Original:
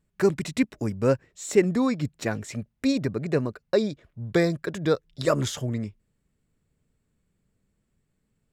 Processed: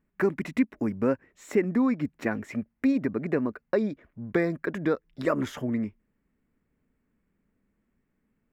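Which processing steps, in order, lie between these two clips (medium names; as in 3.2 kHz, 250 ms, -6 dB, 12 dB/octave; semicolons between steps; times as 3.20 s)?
graphic EQ 125/250/1000/2000/4000/8000 Hz -7/+9/+4/+7/-9/-11 dB; compression 2:1, threshold -21 dBFS, peak gain reduction 7 dB; trim -2.5 dB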